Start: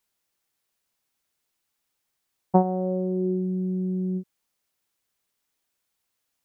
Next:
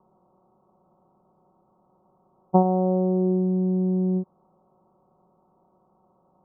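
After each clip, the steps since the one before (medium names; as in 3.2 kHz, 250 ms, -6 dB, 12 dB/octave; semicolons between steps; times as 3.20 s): spectral levelling over time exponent 0.6; steep low-pass 1.3 kHz 96 dB/octave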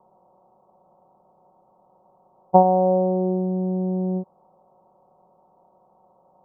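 high-order bell 680 Hz +9 dB 1.3 oct; trim -1.5 dB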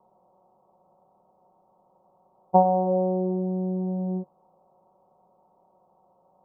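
flange 0.75 Hz, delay 9.3 ms, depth 2.4 ms, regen -62%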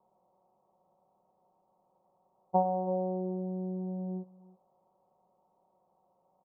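delay 330 ms -20 dB; trim -9 dB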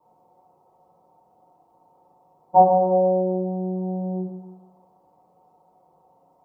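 FDN reverb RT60 0.85 s, low-frequency decay 1.05×, high-frequency decay 0.5×, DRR -8.5 dB; trim +2.5 dB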